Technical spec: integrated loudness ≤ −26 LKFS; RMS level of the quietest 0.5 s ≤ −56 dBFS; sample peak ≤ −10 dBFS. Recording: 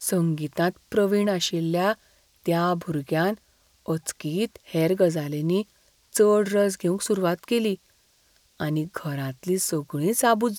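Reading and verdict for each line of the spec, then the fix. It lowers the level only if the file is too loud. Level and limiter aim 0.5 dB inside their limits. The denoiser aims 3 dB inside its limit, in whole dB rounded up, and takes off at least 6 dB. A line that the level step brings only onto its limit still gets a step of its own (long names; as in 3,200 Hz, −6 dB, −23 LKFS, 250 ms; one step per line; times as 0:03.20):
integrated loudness −25.0 LKFS: out of spec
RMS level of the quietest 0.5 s −62 dBFS: in spec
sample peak −7.5 dBFS: out of spec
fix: level −1.5 dB
brickwall limiter −10.5 dBFS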